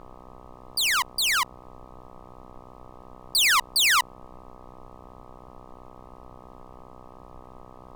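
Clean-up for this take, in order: de-hum 62.9 Hz, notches 20; noise print and reduce 22 dB

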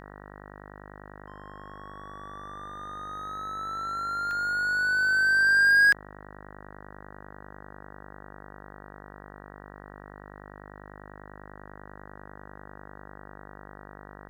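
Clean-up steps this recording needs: de-hum 50.1 Hz, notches 38; interpolate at 4.31 s, 1.2 ms

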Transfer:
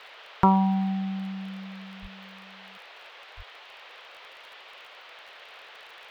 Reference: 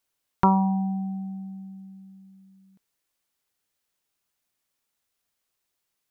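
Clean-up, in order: de-click; 2.01–2.13 s: high-pass 140 Hz 24 dB/octave; 3.36–3.48 s: high-pass 140 Hz 24 dB/octave; noise print and reduce 30 dB

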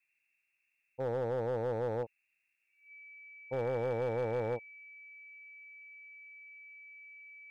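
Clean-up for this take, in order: clip repair -28 dBFS; band-stop 2.3 kHz, Q 30; noise print and reduce 6 dB

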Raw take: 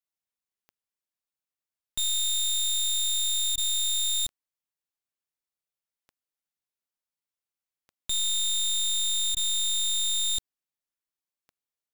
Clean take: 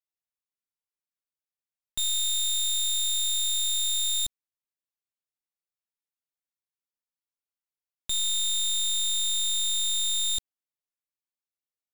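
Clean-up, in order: de-click; interpolate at 3.56/9.35 s, 16 ms

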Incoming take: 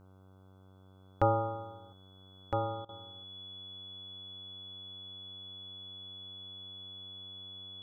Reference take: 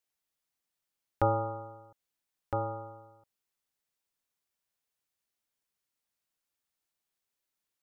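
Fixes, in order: de-hum 94.8 Hz, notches 16; band-stop 3.4 kHz, Q 30; interpolate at 2.85 s, 38 ms

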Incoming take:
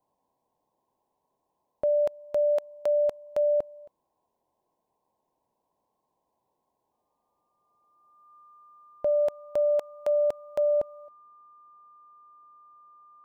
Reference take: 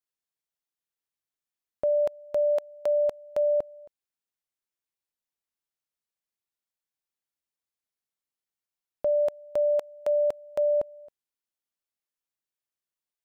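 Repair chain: band-stop 1.2 kHz, Q 30; noise print and reduce 13 dB; trim 0 dB, from 11.08 s +10.5 dB

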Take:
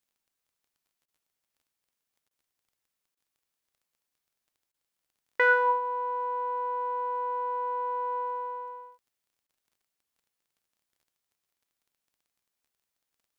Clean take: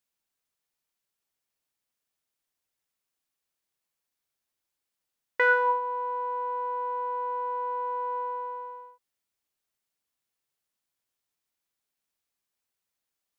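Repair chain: de-click; interpolate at 1.06/2.29/3.15/4.72/9.47 s, 19 ms

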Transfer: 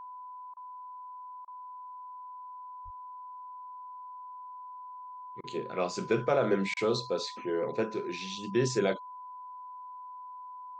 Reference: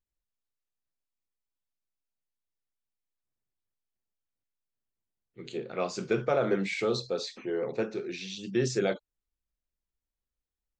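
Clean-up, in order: band-stop 1 kHz, Q 30; 2.84–2.96 s: high-pass 140 Hz 24 dB/octave; interpolate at 0.54/1.45/5.41/6.74 s, 26 ms

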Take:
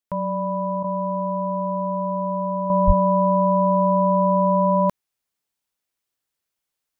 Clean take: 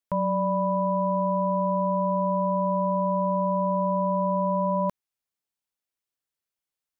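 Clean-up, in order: 2.86–2.98 s: high-pass 140 Hz 24 dB/octave; interpolate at 0.83 s, 11 ms; 2.70 s: gain correction -6.5 dB

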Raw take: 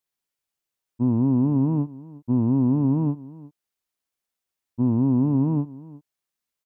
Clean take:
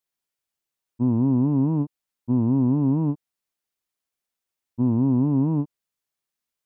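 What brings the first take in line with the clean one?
inverse comb 356 ms -19.5 dB

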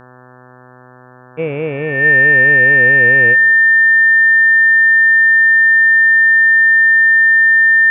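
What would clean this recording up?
de-hum 125.8 Hz, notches 14; band-stop 1.8 kHz, Q 30; inverse comb 197 ms -24 dB

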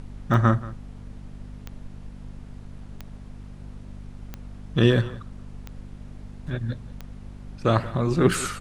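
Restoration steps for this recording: de-click; de-hum 49.4 Hz, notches 5; noise print and reduce 28 dB; inverse comb 180 ms -18.5 dB

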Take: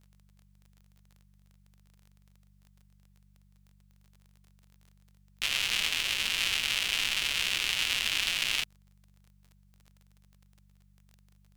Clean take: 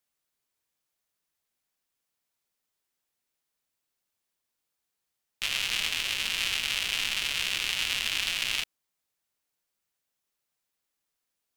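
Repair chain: de-click; de-hum 48.7 Hz, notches 4

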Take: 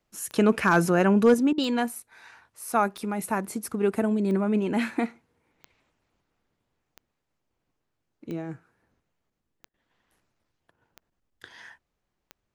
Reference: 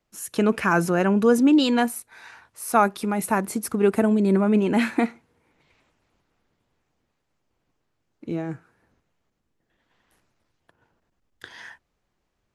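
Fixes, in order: clip repair -10 dBFS; de-click; interpolate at 1.53/9.69 s, 48 ms; trim 0 dB, from 1.34 s +5 dB

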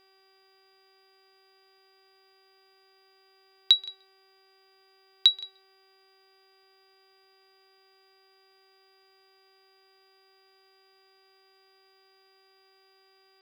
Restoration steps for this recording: de-hum 384.3 Hz, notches 10; band-stop 4.8 kHz, Q 30; expander -55 dBFS, range -21 dB; inverse comb 169 ms -21 dB

